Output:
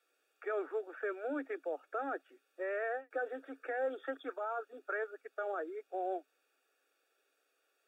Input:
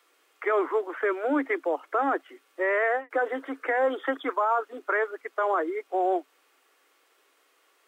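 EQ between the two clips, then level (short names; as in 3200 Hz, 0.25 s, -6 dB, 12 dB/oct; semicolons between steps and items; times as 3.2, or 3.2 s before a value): running mean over 43 samples; differentiator; bell 340 Hz -4 dB 0.26 oct; +16.5 dB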